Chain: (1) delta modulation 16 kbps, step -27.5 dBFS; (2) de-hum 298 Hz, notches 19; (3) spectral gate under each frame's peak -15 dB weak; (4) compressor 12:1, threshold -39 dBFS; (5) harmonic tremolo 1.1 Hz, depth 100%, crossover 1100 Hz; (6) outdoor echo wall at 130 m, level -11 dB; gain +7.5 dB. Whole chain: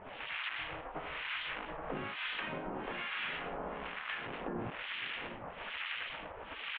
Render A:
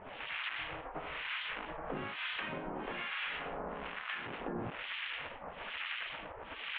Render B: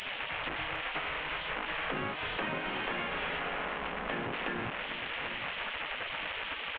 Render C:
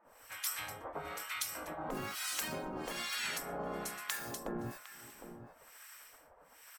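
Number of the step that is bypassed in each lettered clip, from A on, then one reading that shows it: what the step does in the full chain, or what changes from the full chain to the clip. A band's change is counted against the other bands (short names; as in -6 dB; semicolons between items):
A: 6, echo-to-direct -13.5 dB to none; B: 5, momentary loudness spread change -3 LU; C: 1, 2 kHz band -4.0 dB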